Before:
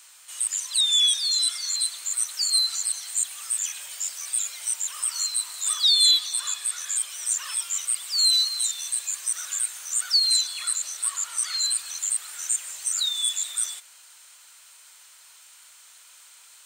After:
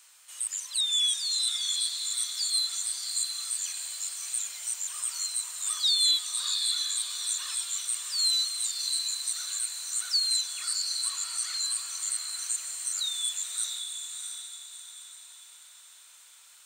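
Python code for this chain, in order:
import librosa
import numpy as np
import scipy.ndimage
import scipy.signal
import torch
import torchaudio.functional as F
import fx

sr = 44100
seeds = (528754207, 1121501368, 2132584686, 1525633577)

y = fx.echo_diffused(x, sr, ms=668, feedback_pct=44, wet_db=-5)
y = F.gain(torch.from_numpy(y), -6.0).numpy()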